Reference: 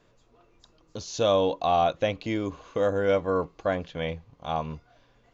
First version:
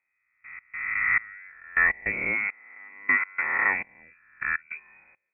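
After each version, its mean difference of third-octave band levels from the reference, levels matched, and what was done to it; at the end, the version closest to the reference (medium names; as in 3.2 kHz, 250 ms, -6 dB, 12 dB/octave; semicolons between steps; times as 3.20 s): 14.5 dB: reverse spectral sustain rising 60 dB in 1.72 s; frequency inversion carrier 2.5 kHz; trance gate "...x.xxx." 102 bpm -24 dB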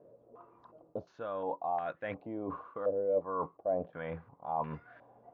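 7.0 dB: high-pass 130 Hz 12 dB/octave; reverse; compression 10:1, threshold -37 dBFS, peak gain reduction 19 dB; reverse; step-sequenced low-pass 2.8 Hz 560–1700 Hz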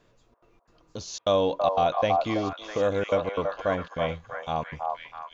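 4.5 dB: trance gate "xxxx.xx.xxxxxx.x" 178 bpm -60 dB; on a send: repeats whose band climbs or falls 327 ms, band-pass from 860 Hz, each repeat 0.7 oct, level 0 dB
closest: third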